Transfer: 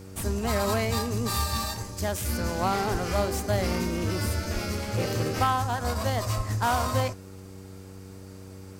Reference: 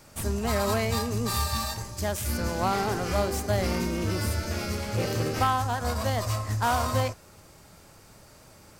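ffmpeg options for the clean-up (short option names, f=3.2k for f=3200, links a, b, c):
-filter_complex "[0:a]bandreject=f=95.3:t=h:w=4,bandreject=f=190.6:t=h:w=4,bandreject=f=285.9:t=h:w=4,bandreject=f=381.2:t=h:w=4,bandreject=f=476.5:t=h:w=4,asplit=3[a][b][c];[a]afade=t=out:st=2.91:d=0.02[d];[b]highpass=f=140:w=0.5412,highpass=f=140:w=1.3066,afade=t=in:st=2.91:d=0.02,afade=t=out:st=3.03:d=0.02[e];[c]afade=t=in:st=3.03:d=0.02[f];[d][e][f]amix=inputs=3:normalize=0,asplit=3[g][h][i];[g]afade=t=out:st=4.53:d=0.02[j];[h]highpass=f=140:w=0.5412,highpass=f=140:w=1.3066,afade=t=in:st=4.53:d=0.02,afade=t=out:st=4.65:d=0.02[k];[i]afade=t=in:st=4.65:d=0.02[l];[j][k][l]amix=inputs=3:normalize=0,asplit=3[m][n][o];[m]afade=t=out:st=6.36:d=0.02[p];[n]highpass=f=140:w=0.5412,highpass=f=140:w=1.3066,afade=t=in:st=6.36:d=0.02,afade=t=out:st=6.48:d=0.02[q];[o]afade=t=in:st=6.48:d=0.02[r];[p][q][r]amix=inputs=3:normalize=0"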